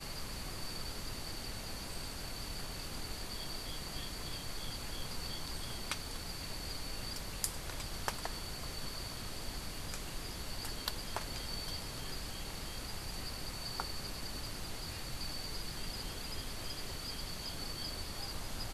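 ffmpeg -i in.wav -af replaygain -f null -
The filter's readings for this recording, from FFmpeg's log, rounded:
track_gain = +23.9 dB
track_peak = 0.164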